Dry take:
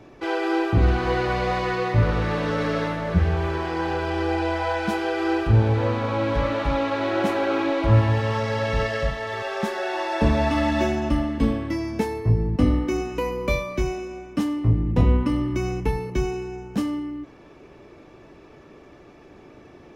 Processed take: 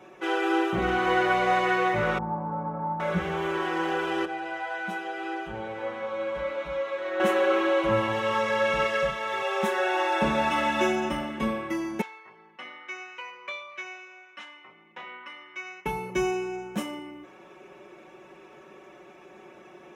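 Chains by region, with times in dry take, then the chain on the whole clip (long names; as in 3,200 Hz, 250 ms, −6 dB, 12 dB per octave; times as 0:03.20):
0:02.18–0:03.00: transistor ladder low-pass 920 Hz, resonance 80% + low shelf with overshoot 330 Hz +10.5 dB, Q 1.5
0:04.25–0:07.20: high-shelf EQ 5,500 Hz −6.5 dB + tuned comb filter 60 Hz, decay 0.17 s, harmonics odd, mix 90%
0:12.01–0:15.86: flat-topped band-pass 2,700 Hz, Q 0.73 + spectral tilt −3 dB per octave + double-tracking delay 13 ms −12 dB
whole clip: high-pass filter 560 Hz 6 dB per octave; parametric band 4,600 Hz −12.5 dB 0.45 octaves; comb filter 5.4 ms, depth 91%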